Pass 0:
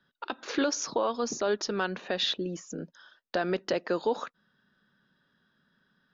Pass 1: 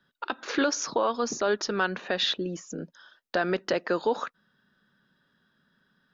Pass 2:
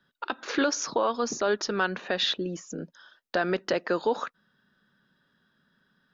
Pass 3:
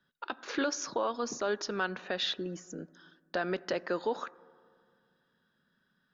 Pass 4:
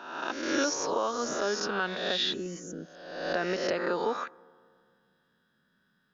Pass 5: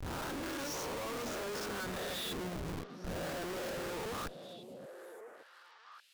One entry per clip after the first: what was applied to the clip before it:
dynamic EQ 1500 Hz, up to +4 dB, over -46 dBFS, Q 1.2; gain +1.5 dB
nothing audible
reverb RT60 2.2 s, pre-delay 4 ms, DRR 19.5 dB; gain -6 dB
spectral swells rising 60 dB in 1.03 s
Schmitt trigger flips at -37.5 dBFS; delay with a stepping band-pass 0.575 s, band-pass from 200 Hz, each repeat 1.4 oct, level -5.5 dB; gain -6.5 dB

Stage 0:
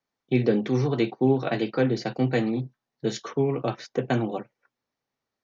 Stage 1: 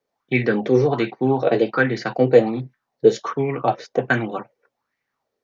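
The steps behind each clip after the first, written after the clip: LFO bell 1.3 Hz 440–2100 Hz +16 dB; gain +1 dB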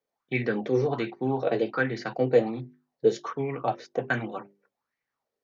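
notches 50/100/150/200/250/300/350/400 Hz; gain -7.5 dB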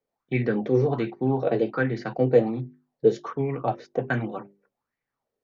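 tilt -2 dB/oct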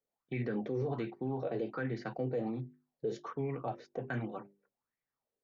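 limiter -18 dBFS, peak gain reduction 11.5 dB; gain -8.5 dB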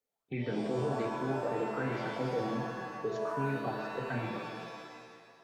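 bin magnitudes rounded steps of 15 dB; shimmer reverb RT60 1.7 s, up +7 st, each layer -2 dB, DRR 3 dB

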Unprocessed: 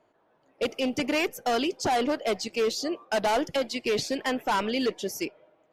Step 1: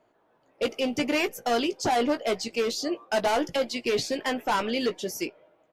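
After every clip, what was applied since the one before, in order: doubler 17 ms -9 dB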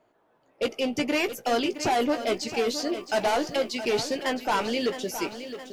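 lo-fi delay 0.666 s, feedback 55%, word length 9-bit, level -11 dB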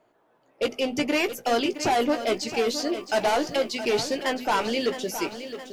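notches 50/100/150/200/250 Hz; gain +1.5 dB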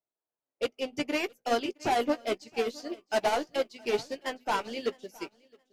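upward expander 2.5:1, over -41 dBFS; gain -2 dB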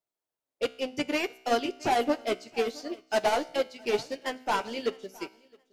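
resonator 64 Hz, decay 0.75 s, harmonics all, mix 40%; gain +5 dB

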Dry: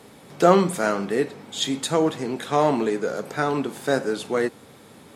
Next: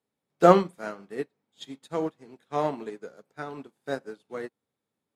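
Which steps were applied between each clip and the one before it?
dynamic EQ 7500 Hz, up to -5 dB, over -45 dBFS, Q 1.1; upward expander 2.5:1, over -38 dBFS; gain +1.5 dB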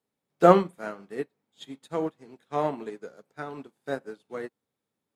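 dynamic EQ 5300 Hz, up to -7 dB, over -56 dBFS, Q 1.6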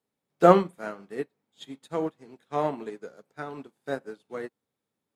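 nothing audible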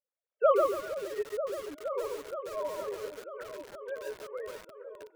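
sine-wave speech; repeats that get brighter 0.471 s, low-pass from 400 Hz, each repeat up 1 oct, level -6 dB; lo-fi delay 0.14 s, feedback 35%, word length 6-bit, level -3 dB; gain -7.5 dB

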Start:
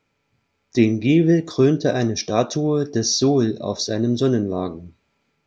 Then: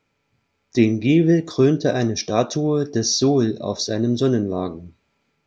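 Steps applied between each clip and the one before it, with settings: nothing audible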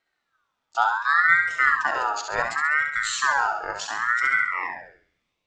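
flutter echo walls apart 11.5 m, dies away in 0.7 s; high-pass sweep 130 Hz -> 950 Hz, 4.09–5.09; ring modulator with a swept carrier 1400 Hz, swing 25%, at 0.69 Hz; gain -6 dB

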